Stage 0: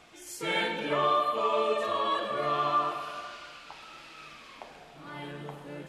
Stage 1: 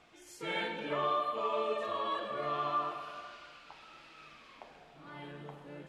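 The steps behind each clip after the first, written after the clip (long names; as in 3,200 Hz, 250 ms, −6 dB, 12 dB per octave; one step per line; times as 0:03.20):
high-shelf EQ 7,300 Hz −10.5 dB
level −6 dB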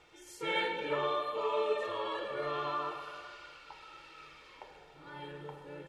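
comb filter 2.2 ms, depth 67%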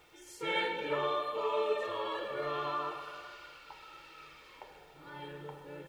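background noise white −75 dBFS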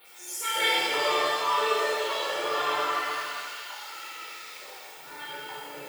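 time-frequency cells dropped at random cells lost 39%
RIAA equalisation recording
reverb with rising layers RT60 1.9 s, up +7 semitones, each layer −8 dB, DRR −9.5 dB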